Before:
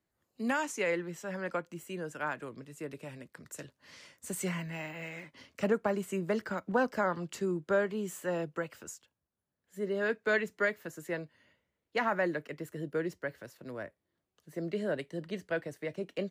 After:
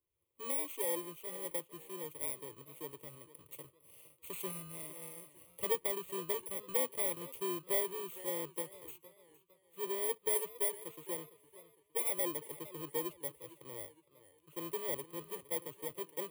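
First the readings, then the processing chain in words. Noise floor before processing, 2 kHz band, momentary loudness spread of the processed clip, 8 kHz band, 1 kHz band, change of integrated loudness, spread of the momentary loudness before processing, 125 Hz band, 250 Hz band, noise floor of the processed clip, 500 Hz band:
-85 dBFS, -14.0 dB, 17 LU, +5.5 dB, -9.0 dB, -3.0 dB, 16 LU, -13.0 dB, -11.5 dB, -73 dBFS, -7.0 dB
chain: bit-reversed sample order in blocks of 32 samples; static phaser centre 1.1 kHz, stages 8; modulated delay 459 ms, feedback 39%, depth 116 cents, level -17 dB; trim -3 dB

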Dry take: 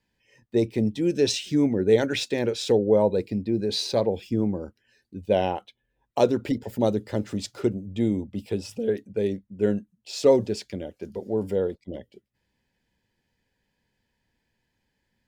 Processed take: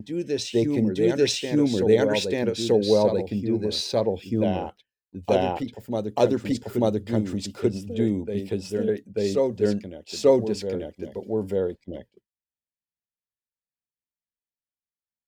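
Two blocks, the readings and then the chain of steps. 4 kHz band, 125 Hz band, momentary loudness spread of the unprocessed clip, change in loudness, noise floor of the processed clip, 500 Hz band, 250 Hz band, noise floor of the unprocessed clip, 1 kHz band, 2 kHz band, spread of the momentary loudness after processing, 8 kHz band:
+1.0 dB, +1.0 dB, 14 LU, +1.0 dB, under -85 dBFS, +1.0 dB, +1.0 dB, -77 dBFS, +1.0 dB, +1.0 dB, 11 LU, +1.0 dB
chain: reverse echo 889 ms -5 dB; expander -41 dBFS

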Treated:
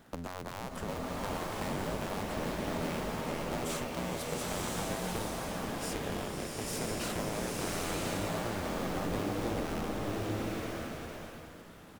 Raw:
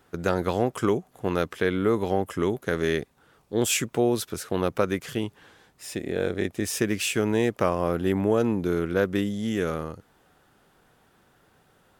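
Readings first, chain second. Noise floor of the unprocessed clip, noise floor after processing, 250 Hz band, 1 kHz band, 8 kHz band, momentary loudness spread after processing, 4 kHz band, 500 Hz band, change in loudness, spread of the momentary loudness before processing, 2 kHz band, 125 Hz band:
-63 dBFS, -49 dBFS, -10.0 dB, -4.5 dB, -6.5 dB, 7 LU, -5.5 dB, -11.5 dB, -9.5 dB, 7 LU, -7.0 dB, -7.0 dB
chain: cycle switcher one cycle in 2, inverted; on a send: delay 455 ms -18.5 dB; on the sum: peak limiter -17.5 dBFS, peak gain reduction 9 dB; peaking EQ 190 Hz +8.5 dB 1.4 oct; compression 5:1, threshold -39 dBFS, peak gain reduction 17 dB; swelling reverb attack 1030 ms, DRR -4.5 dB

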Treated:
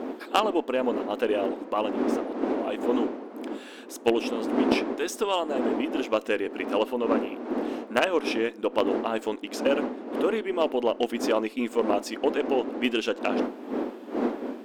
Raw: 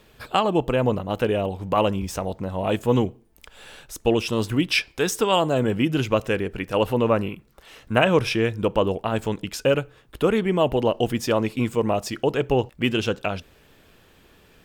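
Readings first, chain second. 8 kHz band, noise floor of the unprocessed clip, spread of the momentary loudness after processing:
-6.5 dB, -55 dBFS, 6 LU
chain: wind noise 300 Hz -20 dBFS; treble shelf 6.4 kHz -5 dB; gain riding within 5 dB 0.5 s; brick-wall FIR high-pass 220 Hz; Chebyshev shaper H 3 -15 dB, 5 -25 dB, 8 -42 dB, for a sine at -4.5 dBFS; trim -3 dB

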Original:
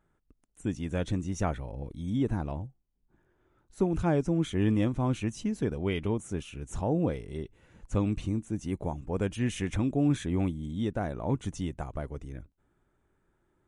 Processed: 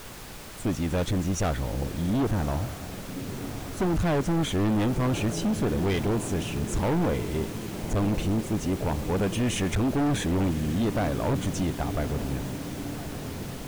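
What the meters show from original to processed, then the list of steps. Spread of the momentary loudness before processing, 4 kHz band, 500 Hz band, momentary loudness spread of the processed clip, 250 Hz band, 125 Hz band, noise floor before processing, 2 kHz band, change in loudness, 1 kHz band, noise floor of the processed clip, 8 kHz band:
12 LU, +9.0 dB, +4.5 dB, 10 LU, +3.5 dB, +4.0 dB, -74 dBFS, +7.0 dB, +3.5 dB, +6.5 dB, -39 dBFS, +10.0 dB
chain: echo that smears into a reverb 1142 ms, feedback 66%, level -14.5 dB; added noise pink -50 dBFS; hard clipper -30.5 dBFS, distortion -6 dB; trim +8.5 dB

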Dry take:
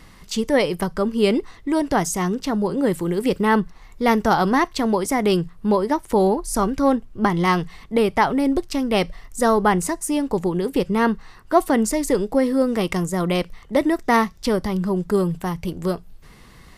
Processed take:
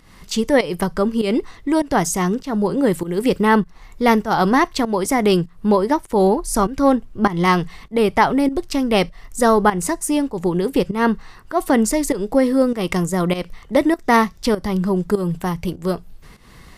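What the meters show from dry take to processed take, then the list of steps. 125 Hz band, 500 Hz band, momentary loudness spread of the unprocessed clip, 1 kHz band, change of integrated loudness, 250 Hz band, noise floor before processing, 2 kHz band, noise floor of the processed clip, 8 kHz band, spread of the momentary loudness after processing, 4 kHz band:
+2.0 dB, +2.0 dB, 6 LU, +2.0 dB, +2.0 dB, +2.5 dB, -47 dBFS, +2.5 dB, -44 dBFS, +3.0 dB, 7 LU, +2.0 dB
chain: volume shaper 99 bpm, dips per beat 1, -14 dB, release 229 ms; trim +3 dB

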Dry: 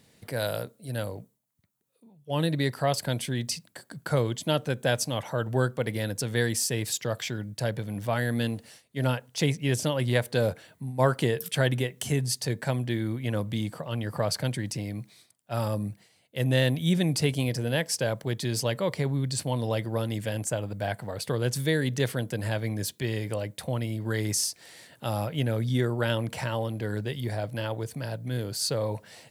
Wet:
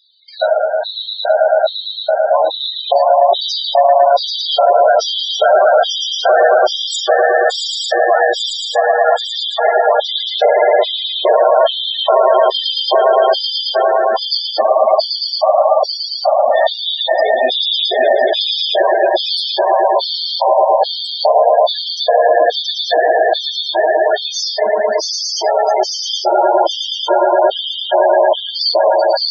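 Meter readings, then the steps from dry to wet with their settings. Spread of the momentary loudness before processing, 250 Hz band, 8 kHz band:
8 LU, -2.5 dB, no reading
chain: median filter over 3 samples; bass shelf 440 Hz -8.5 dB; echo with a slow build-up 112 ms, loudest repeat 8, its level -3 dB; simulated room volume 900 m³, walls furnished, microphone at 3.2 m; LFO high-pass square 1.2 Hz 710–3700 Hz; tilt EQ -1.5 dB/octave; band-stop 2.8 kHz, Q 25; loudest bins only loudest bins 16; loudness maximiser +12.5 dB; trim -1 dB

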